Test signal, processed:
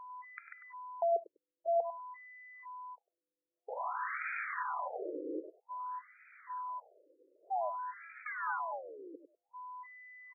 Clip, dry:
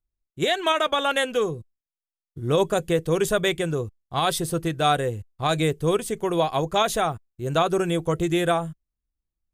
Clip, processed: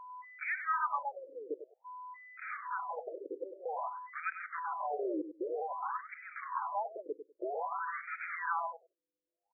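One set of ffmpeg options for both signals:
-filter_complex "[0:a]agate=range=0.0398:threshold=0.01:ratio=16:detection=peak,acrossover=split=2900[s0][s1];[s1]acompressor=threshold=0.02:ratio=4:attack=1:release=60[s2];[s0][s2]amix=inputs=2:normalize=0,firequalizer=gain_entry='entry(110,0);entry(200,-7);entry(340,-29);entry(490,-25);entry(920,-10);entry(2000,-7);entry(4500,-4);entry(7000,-15);entry(10000,12);entry(14000,-11)':delay=0.05:min_phase=1,acrossover=split=520|2800[s3][s4][s5];[s3]aeval=exprs='(mod(39.8*val(0)+1,2)-1)/39.8':c=same[s6];[s6][s4][s5]amix=inputs=3:normalize=0,aeval=exprs='val(0)+0.00708*sin(2*PI*1000*n/s)':c=same,acrusher=bits=8:dc=4:mix=0:aa=0.000001,aecho=1:1:99|198:0.316|0.0506,afftfilt=real='re*between(b*sr/1024,390*pow(1800/390,0.5+0.5*sin(2*PI*0.52*pts/sr))/1.41,390*pow(1800/390,0.5+0.5*sin(2*PI*0.52*pts/sr))*1.41)':imag='im*between(b*sr/1024,390*pow(1800/390,0.5+0.5*sin(2*PI*0.52*pts/sr))/1.41,390*pow(1800/390,0.5+0.5*sin(2*PI*0.52*pts/sr))*1.41)':win_size=1024:overlap=0.75,volume=1.41"

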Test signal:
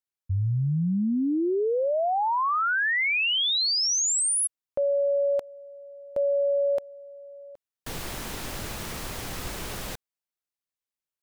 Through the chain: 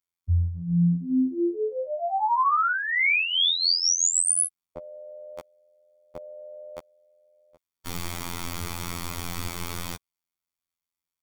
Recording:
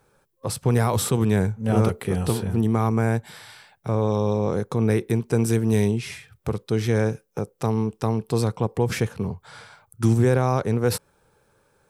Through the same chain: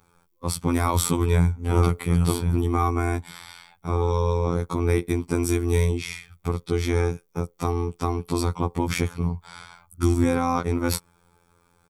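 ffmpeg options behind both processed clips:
-af "aecho=1:1:0.9:0.49,afftfilt=real='hypot(re,im)*cos(PI*b)':imag='0':win_size=2048:overlap=0.75,volume=1.5"

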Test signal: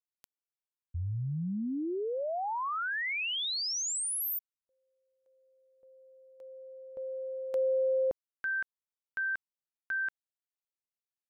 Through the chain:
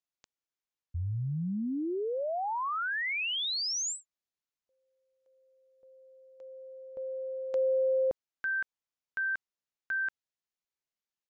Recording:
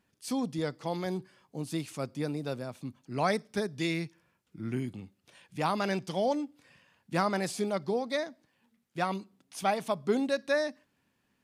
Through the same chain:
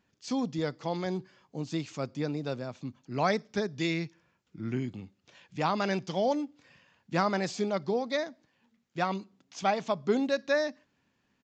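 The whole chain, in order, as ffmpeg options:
-af "aresample=16000,aresample=44100,volume=1.12"

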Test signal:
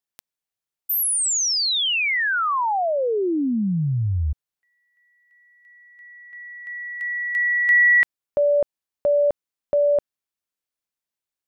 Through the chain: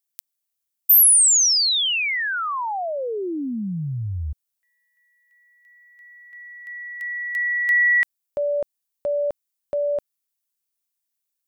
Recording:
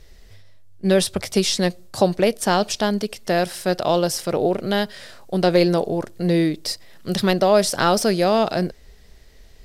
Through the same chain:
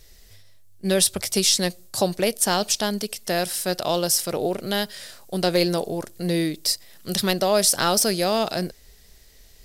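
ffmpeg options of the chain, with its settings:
-af "crystalizer=i=3:c=0,volume=0.562"

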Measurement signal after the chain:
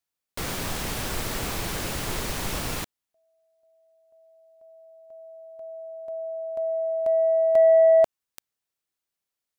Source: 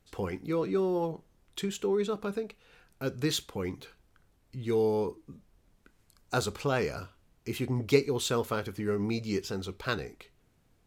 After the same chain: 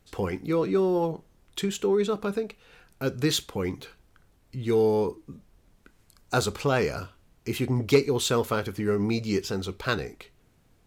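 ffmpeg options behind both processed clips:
-af "asoftclip=type=tanh:threshold=0.224,volume=1.78"

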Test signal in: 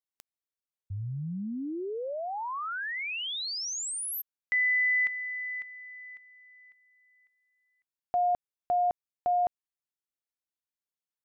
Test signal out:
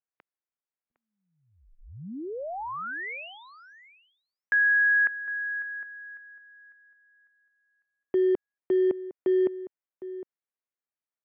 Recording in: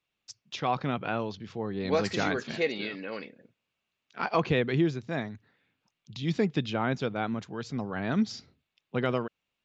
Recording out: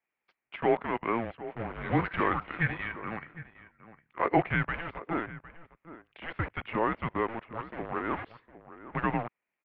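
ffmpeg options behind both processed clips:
-filter_complex "[0:a]asplit=2[s0][s1];[s1]acrusher=bits=4:mix=0:aa=0.000001,volume=0.631[s2];[s0][s2]amix=inputs=2:normalize=0,asplit=2[s3][s4];[s4]adelay=758,volume=0.2,highshelf=f=4000:g=-17.1[s5];[s3][s5]amix=inputs=2:normalize=0,highpass=f=570:t=q:w=0.5412,highpass=f=570:t=q:w=1.307,lowpass=f=2700:t=q:w=0.5176,lowpass=f=2700:t=q:w=0.7071,lowpass=f=2700:t=q:w=1.932,afreqshift=-340"

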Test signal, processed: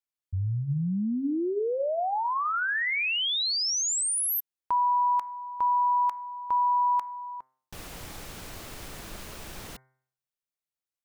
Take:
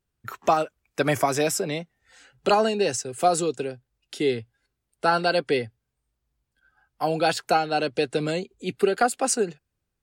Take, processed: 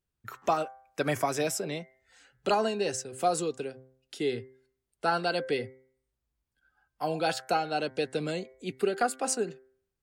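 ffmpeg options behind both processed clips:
-af "bandreject=f=130.5:t=h:w=4,bandreject=f=261:t=h:w=4,bandreject=f=391.5:t=h:w=4,bandreject=f=522:t=h:w=4,bandreject=f=652.5:t=h:w=4,bandreject=f=783:t=h:w=4,bandreject=f=913.5:t=h:w=4,bandreject=f=1044:t=h:w=4,bandreject=f=1174.5:t=h:w=4,bandreject=f=1305:t=h:w=4,bandreject=f=1435.5:t=h:w=4,bandreject=f=1566:t=h:w=4,bandreject=f=1696.5:t=h:w=4,bandreject=f=1827:t=h:w=4,bandreject=f=1957.5:t=h:w=4,bandreject=f=2088:t=h:w=4,bandreject=f=2218.5:t=h:w=4,volume=0.501"

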